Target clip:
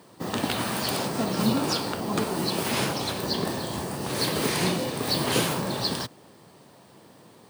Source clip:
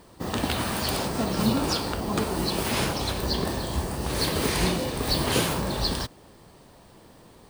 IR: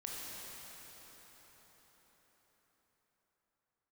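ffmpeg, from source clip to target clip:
-af "highpass=frequency=110:width=0.5412,highpass=frequency=110:width=1.3066"

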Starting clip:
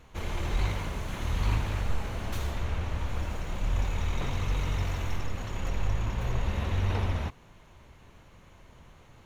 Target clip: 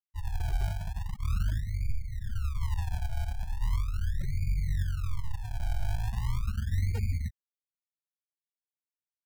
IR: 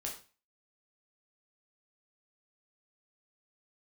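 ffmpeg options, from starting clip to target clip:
-af "afftfilt=real='re*gte(hypot(re,im),0.1)':imag='im*gte(hypot(re,im),0.1)':win_size=1024:overlap=0.75,alimiter=limit=-22dB:level=0:latency=1:release=482,acrusher=samples=38:mix=1:aa=0.000001:lfo=1:lforange=38:lforate=0.39,volume=1.5dB"

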